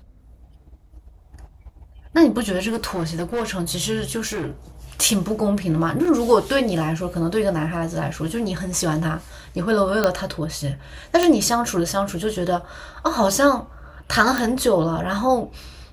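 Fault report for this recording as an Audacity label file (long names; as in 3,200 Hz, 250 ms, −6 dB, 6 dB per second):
2.670000	3.450000	clipping −20 dBFS
4.260000	4.490000	clipping −23.5 dBFS
6.050000	6.050000	drop-out 3.6 ms
10.040000	10.040000	click −5 dBFS
11.230000	11.230000	click −5 dBFS
14.380000	14.380000	click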